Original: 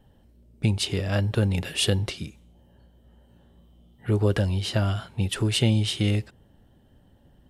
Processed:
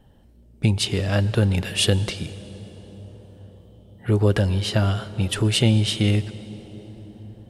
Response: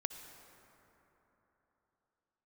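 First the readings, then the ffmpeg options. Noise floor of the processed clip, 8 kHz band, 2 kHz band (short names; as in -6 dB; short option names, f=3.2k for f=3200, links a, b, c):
-52 dBFS, +3.5 dB, +3.5 dB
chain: -filter_complex "[0:a]asplit=2[a][b];[1:a]atrim=start_sample=2205,asetrate=22932,aresample=44100[c];[b][c]afir=irnorm=-1:irlink=0,volume=-8.5dB[d];[a][d]amix=inputs=2:normalize=0"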